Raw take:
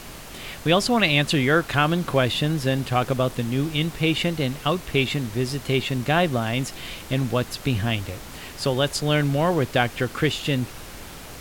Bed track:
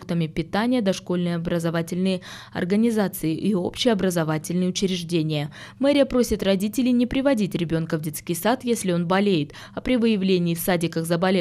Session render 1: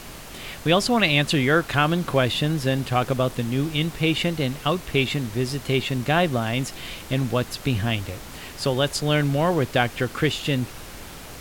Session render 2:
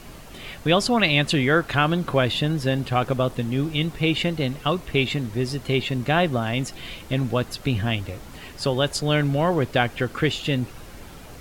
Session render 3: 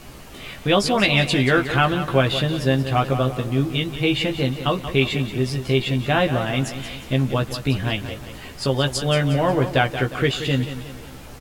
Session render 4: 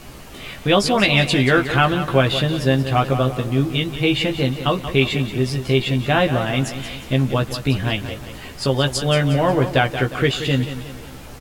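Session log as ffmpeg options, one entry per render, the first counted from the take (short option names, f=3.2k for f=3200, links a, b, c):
-af anull
-af "afftdn=nr=7:nf=-40"
-filter_complex "[0:a]asplit=2[a][b];[b]adelay=15,volume=-4.5dB[c];[a][c]amix=inputs=2:normalize=0,aecho=1:1:180|360|540|720|900:0.282|0.13|0.0596|0.0274|0.0126"
-af "volume=2dB,alimiter=limit=-3dB:level=0:latency=1"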